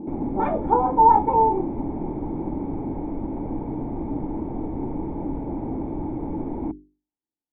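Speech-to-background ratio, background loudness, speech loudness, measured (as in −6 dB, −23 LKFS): 10.5 dB, −30.0 LKFS, −19.5 LKFS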